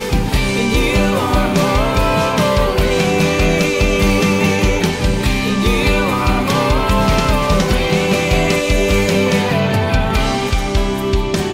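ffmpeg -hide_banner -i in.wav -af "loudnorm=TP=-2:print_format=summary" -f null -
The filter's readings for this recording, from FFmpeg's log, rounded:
Input Integrated:    -15.3 LUFS
Input True Peak:      -3.5 dBTP
Input LRA:             1.3 LU
Input Threshold:     -25.3 LUFS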